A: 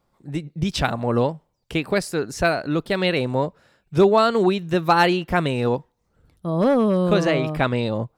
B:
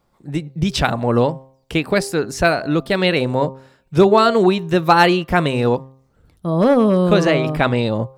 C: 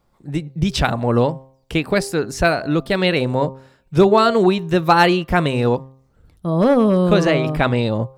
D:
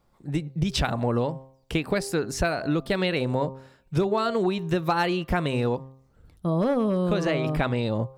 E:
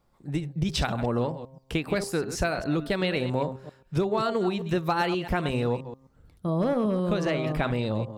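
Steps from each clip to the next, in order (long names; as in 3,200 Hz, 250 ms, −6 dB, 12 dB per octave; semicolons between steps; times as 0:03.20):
hum removal 132.7 Hz, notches 9; level +4.5 dB
low-shelf EQ 76 Hz +6.5 dB; level −1 dB
downward compressor, threshold −18 dBFS, peak gain reduction 10.5 dB; level −2.5 dB
delay that plays each chunk backwards 132 ms, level −11.5 dB; level −2 dB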